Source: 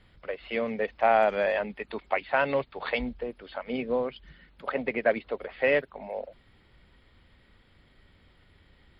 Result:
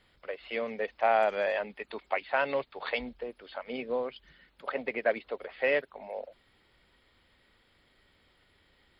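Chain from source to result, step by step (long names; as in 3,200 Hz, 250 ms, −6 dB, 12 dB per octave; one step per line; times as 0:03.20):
bass and treble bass −9 dB, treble +5 dB
level −3 dB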